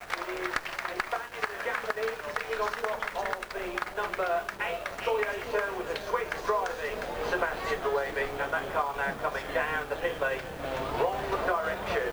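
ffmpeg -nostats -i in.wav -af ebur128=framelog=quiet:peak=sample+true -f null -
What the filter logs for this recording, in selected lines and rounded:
Integrated loudness:
  I:         -31.3 LUFS
  Threshold: -41.3 LUFS
Loudness range:
  LRA:         1.9 LU
  Threshold: -51.3 LUFS
  LRA low:   -32.4 LUFS
  LRA high:  -30.5 LUFS
Sample peak:
  Peak:      -14.4 dBFS
True peak:
  Peak:      -14.3 dBFS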